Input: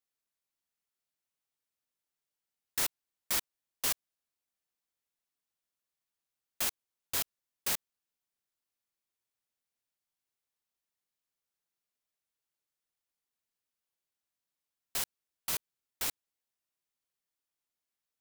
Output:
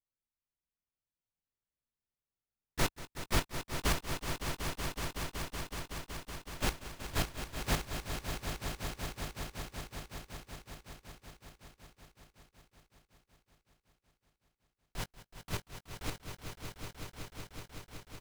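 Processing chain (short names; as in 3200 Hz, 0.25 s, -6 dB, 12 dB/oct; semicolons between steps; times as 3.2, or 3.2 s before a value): gate -31 dBFS, range -15 dB; RIAA curve playback; doubler 19 ms -13.5 dB; swelling echo 0.187 s, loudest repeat 5, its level -9.5 dB; gain +6 dB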